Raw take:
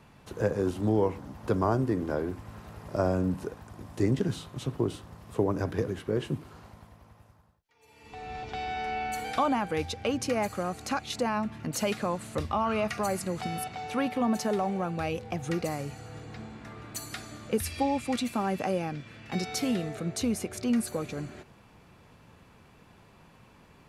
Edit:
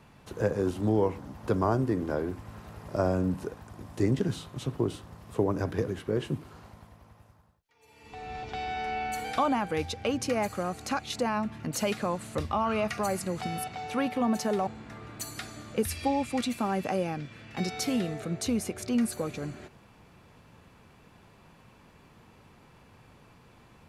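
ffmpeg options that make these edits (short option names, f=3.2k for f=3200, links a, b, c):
-filter_complex "[0:a]asplit=2[a][b];[a]atrim=end=14.672[c];[b]atrim=start=16.418[d];[c][d]acrossfade=d=0.004:c1=hsin:c2=hsin"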